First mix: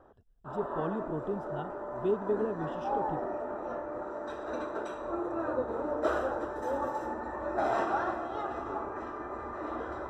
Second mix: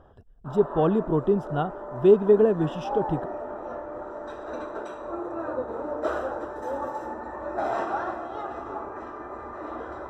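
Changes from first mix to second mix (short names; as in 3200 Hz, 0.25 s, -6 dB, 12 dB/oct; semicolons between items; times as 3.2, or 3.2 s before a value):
speech +12.0 dB; master: add bell 710 Hz +2 dB 1.7 oct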